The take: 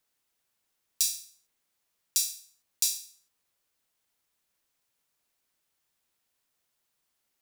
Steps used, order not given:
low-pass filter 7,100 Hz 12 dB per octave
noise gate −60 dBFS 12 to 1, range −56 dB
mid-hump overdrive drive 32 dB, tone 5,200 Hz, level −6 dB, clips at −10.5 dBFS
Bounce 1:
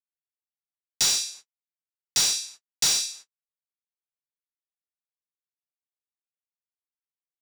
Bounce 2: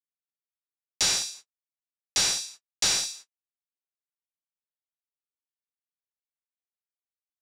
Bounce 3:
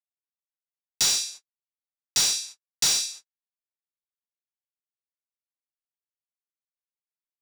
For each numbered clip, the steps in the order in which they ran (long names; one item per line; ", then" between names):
noise gate, then low-pass filter, then mid-hump overdrive
noise gate, then mid-hump overdrive, then low-pass filter
low-pass filter, then noise gate, then mid-hump overdrive